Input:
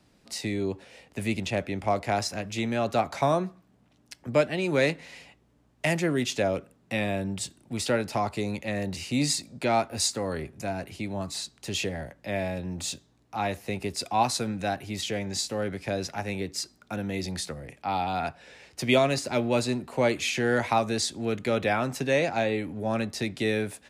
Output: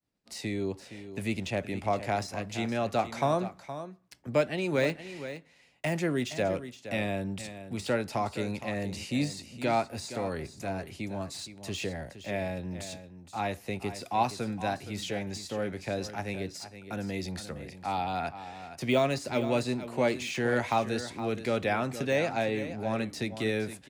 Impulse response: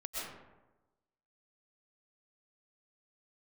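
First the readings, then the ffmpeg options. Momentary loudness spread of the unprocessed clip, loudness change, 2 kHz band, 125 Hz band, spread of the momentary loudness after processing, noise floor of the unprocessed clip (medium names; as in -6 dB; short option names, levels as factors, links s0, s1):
9 LU, -3.5 dB, -3.5 dB, -3.0 dB, 11 LU, -64 dBFS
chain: -af "deesser=0.75,agate=range=0.0224:threshold=0.00316:ratio=3:detection=peak,aecho=1:1:467:0.251,volume=0.708"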